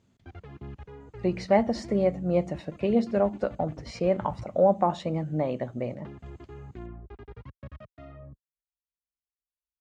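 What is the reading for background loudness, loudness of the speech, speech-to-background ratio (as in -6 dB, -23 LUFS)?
-46.0 LUFS, -27.0 LUFS, 19.0 dB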